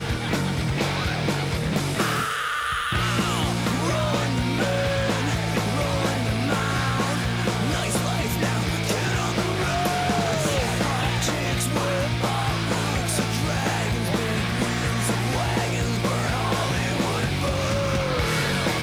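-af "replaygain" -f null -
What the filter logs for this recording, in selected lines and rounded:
track_gain = +7.2 dB
track_peak = 0.157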